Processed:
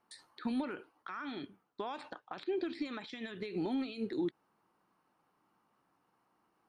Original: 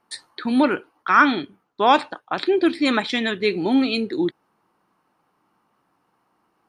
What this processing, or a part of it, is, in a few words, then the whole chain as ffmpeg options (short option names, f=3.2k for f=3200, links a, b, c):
de-esser from a sidechain: -filter_complex "[0:a]asettb=1/sr,asplit=3[a][b][c];[a]atrim=end=2.104[d];[b]atrim=start=2.1:end=3.2,asetpts=PTS-STARTPTS,afade=t=in:d=0.004:c=qsin,afade=t=out:st=1.096:d=0.004:c=qsin,lowpass=f=7.5k:w=0.5412,lowpass=f=7.5k:w=1.3066[e];[c]atrim=start=3.196[f];[d][e]acrossfade=d=0.004:c1=hsin:c2=qsin[g];[g][f]acrossfade=d=0.004:c1=qsin:c2=hsin,asplit=2[h][i];[i]highpass=f=4.6k:p=1,apad=whole_len=294621[j];[h][j]sidechaincompress=threshold=-43dB:ratio=8:attack=3.9:release=60,volume=-8dB"